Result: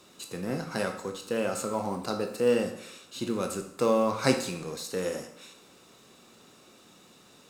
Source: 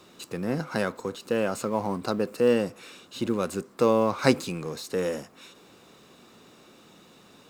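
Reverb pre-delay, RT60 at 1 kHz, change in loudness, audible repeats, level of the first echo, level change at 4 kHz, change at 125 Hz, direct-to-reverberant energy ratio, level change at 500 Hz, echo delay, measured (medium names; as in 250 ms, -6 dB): 17 ms, 0.70 s, -2.5 dB, no echo, no echo, -0.5 dB, -3.5 dB, 4.0 dB, -2.5 dB, no echo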